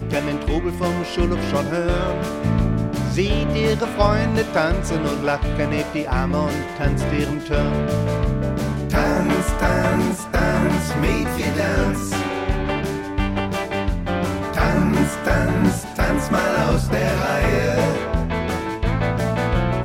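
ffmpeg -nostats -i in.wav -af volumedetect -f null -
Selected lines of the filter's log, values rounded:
mean_volume: -20.0 dB
max_volume: -2.8 dB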